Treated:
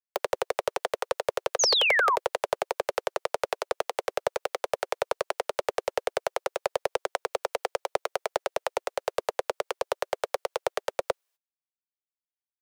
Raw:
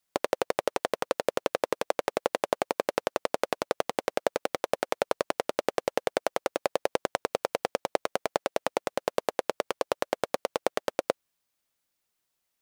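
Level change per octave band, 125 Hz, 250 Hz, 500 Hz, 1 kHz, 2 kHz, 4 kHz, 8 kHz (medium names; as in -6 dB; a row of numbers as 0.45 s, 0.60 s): -4.5 dB, -10.0 dB, -0.5 dB, +1.0 dB, +5.0 dB, +7.5 dB, +6.5 dB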